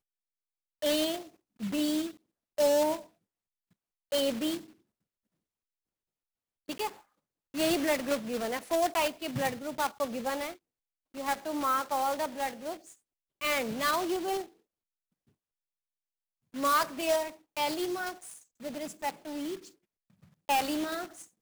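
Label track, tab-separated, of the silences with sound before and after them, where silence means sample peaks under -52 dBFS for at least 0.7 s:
3.070000	4.120000	silence
4.720000	6.680000	silence
14.490000	16.540000	silence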